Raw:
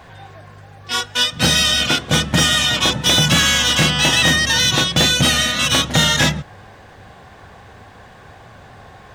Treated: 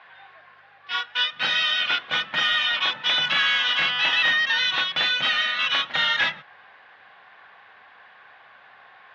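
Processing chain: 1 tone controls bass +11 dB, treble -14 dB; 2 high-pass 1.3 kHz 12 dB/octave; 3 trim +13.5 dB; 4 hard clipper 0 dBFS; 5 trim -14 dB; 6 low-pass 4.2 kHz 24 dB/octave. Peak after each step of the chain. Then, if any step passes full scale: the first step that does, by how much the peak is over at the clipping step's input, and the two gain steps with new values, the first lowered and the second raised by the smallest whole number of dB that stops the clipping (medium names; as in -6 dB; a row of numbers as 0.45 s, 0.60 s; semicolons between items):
+1.5 dBFS, -8.5 dBFS, +5.0 dBFS, 0.0 dBFS, -14.0 dBFS, -12.5 dBFS; step 1, 5.0 dB; step 3 +8.5 dB, step 5 -9 dB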